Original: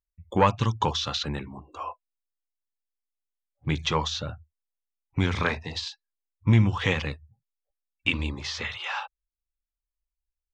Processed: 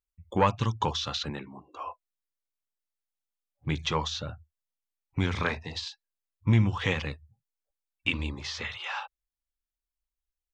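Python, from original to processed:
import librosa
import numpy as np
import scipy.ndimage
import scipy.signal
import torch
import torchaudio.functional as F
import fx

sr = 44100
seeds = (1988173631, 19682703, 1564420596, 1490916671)

y = fx.bandpass_edges(x, sr, low_hz=160.0, high_hz=6200.0, at=(1.3, 1.87))
y = F.gain(torch.from_numpy(y), -3.0).numpy()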